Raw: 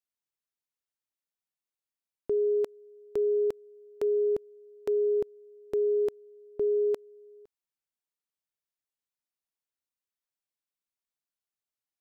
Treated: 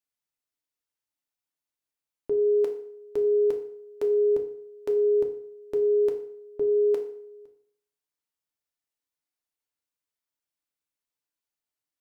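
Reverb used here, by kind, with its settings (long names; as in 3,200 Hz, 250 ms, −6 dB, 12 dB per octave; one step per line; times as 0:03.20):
feedback delay network reverb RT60 0.62 s, low-frequency decay 0.9×, high-frequency decay 0.8×, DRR 3 dB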